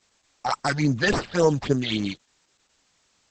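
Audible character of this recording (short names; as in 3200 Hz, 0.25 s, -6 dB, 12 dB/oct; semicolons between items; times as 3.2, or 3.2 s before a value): aliases and images of a low sample rate 6500 Hz, jitter 0%; phasing stages 8, 3.6 Hz, lowest notch 300–3500 Hz; a quantiser's noise floor 12-bit, dither triangular; Opus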